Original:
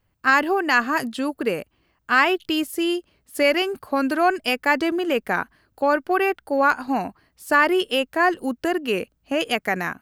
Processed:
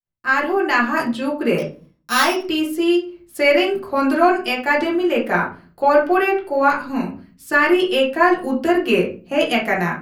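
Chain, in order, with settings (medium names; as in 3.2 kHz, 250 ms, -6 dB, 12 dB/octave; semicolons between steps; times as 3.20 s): 1.58–2.46 s: sorted samples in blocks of 8 samples; expander -55 dBFS; 6.68–7.69 s: peaking EQ 750 Hz -13.5 dB 0.61 oct; level rider; reverberation RT60 0.35 s, pre-delay 6 ms, DRR -4 dB; trim -7.5 dB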